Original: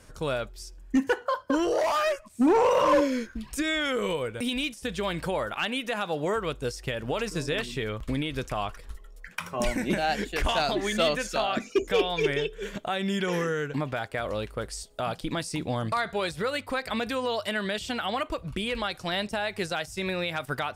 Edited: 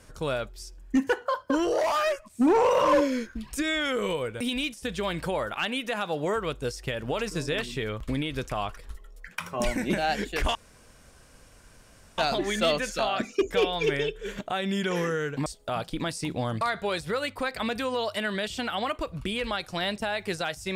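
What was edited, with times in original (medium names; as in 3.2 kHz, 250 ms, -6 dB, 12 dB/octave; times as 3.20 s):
10.55 s: insert room tone 1.63 s
13.83–14.77 s: delete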